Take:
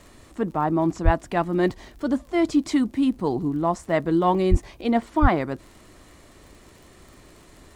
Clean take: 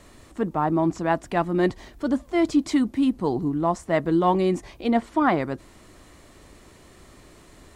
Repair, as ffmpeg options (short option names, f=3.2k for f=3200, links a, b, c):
-filter_complex "[0:a]adeclick=t=4,asplit=3[a][b][c];[a]afade=t=out:st=1.04:d=0.02[d];[b]highpass=f=140:w=0.5412,highpass=f=140:w=1.3066,afade=t=in:st=1.04:d=0.02,afade=t=out:st=1.16:d=0.02[e];[c]afade=t=in:st=1.16:d=0.02[f];[d][e][f]amix=inputs=3:normalize=0,asplit=3[g][h][i];[g]afade=t=out:st=4.5:d=0.02[j];[h]highpass=f=140:w=0.5412,highpass=f=140:w=1.3066,afade=t=in:st=4.5:d=0.02,afade=t=out:st=4.62:d=0.02[k];[i]afade=t=in:st=4.62:d=0.02[l];[j][k][l]amix=inputs=3:normalize=0,asplit=3[m][n][o];[m]afade=t=out:st=5.21:d=0.02[p];[n]highpass=f=140:w=0.5412,highpass=f=140:w=1.3066,afade=t=in:st=5.21:d=0.02,afade=t=out:st=5.33:d=0.02[q];[o]afade=t=in:st=5.33:d=0.02[r];[p][q][r]amix=inputs=3:normalize=0"